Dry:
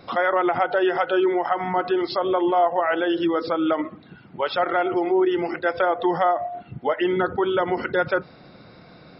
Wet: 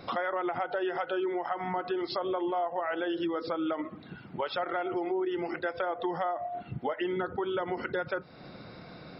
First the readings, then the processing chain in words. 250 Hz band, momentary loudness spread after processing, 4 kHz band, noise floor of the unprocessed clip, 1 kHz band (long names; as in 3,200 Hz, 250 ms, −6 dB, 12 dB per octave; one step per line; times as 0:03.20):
−9.5 dB, 8 LU, −8.0 dB, −48 dBFS, −10.0 dB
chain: downward compressor 3 to 1, threshold −32 dBFS, peak gain reduction 13 dB